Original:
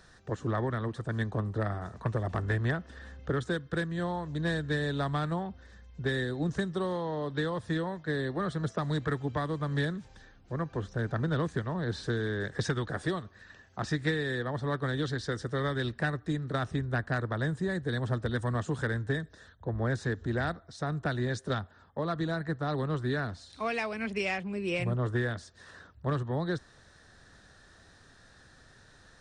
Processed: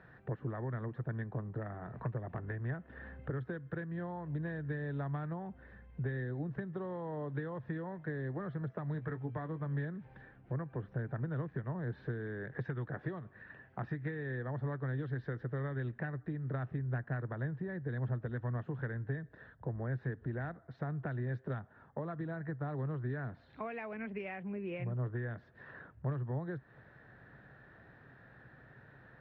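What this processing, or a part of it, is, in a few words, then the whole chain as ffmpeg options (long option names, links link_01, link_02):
bass amplifier: -filter_complex "[0:a]asettb=1/sr,asplit=3[link_01][link_02][link_03];[link_01]atrim=end=8.934[link_04];[link_02]atrim=start=8.93:end=9.66,asetpts=PTS-STARTPTS,afade=type=in:duration=0.004:curve=qsin,afade=type=out:start_time=0.726:duration=0.004:curve=qsin,asplit=2[link_05][link_06];[link_06]adelay=18,volume=-10dB[link_07];[link_05][link_07]amix=inputs=2:normalize=0,atrim=end_sample=32193[link_08];[link_03]atrim=start=9.656[link_09];[link_04][link_08]acrossfade=duration=0.004:curve1=hsin:curve2=qsin[link_10];[link_10][link_09]acrossfade=duration=0.004:curve1=qsin:curve2=hsin,acompressor=threshold=-39dB:ratio=5,highpass=70,equalizer=frequency=85:width_type=q:width=4:gain=-8,equalizer=frequency=130:width_type=q:width=4:gain=8,equalizer=frequency=1200:width_type=q:width=4:gain=-4,lowpass=frequency=2200:width=0.5412,lowpass=frequency=2200:width=1.3066,volume=1dB"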